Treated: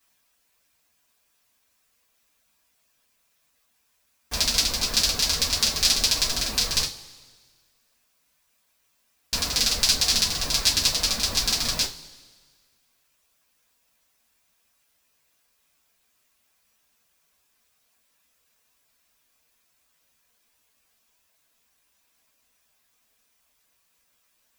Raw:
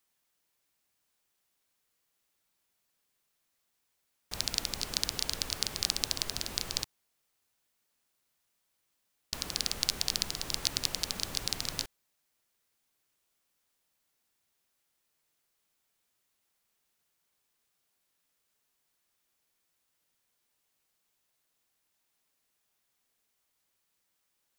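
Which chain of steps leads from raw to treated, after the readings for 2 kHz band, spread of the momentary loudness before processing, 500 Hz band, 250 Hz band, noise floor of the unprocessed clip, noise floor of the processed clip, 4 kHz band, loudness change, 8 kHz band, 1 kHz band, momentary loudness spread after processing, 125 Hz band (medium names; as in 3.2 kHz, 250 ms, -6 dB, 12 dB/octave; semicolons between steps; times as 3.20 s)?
+11.5 dB, 6 LU, +9.0 dB, +9.0 dB, -79 dBFS, -69 dBFS, +11.0 dB, +11.0 dB, +11.5 dB, +10.0 dB, 6 LU, +9.5 dB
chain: reverb removal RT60 0.72 s; two-slope reverb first 0.24 s, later 1.6 s, from -21 dB, DRR -9 dB; trim +3 dB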